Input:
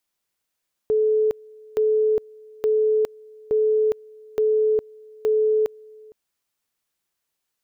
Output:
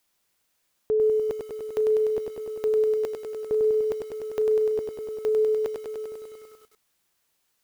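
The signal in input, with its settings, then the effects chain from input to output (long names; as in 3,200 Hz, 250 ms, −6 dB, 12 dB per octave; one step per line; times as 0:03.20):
tone at two levels in turn 432 Hz −16 dBFS, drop 26 dB, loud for 0.41 s, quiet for 0.46 s, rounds 6
in parallel at +2 dB: downward compressor 6 to 1, threshold −28 dBFS
on the sum: brickwall limiter −18.5 dBFS
feedback echo at a low word length 99 ms, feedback 80%, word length 9 bits, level −4.5 dB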